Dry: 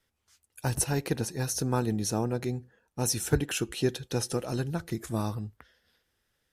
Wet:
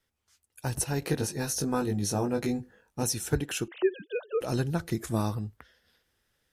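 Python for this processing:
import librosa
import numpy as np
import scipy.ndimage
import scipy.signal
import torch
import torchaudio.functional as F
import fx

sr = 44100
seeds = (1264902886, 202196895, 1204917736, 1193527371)

y = fx.sine_speech(x, sr, at=(3.68, 4.41))
y = fx.rider(y, sr, range_db=5, speed_s=0.5)
y = fx.doubler(y, sr, ms=20.0, db=-3, at=(1.0, 3.03))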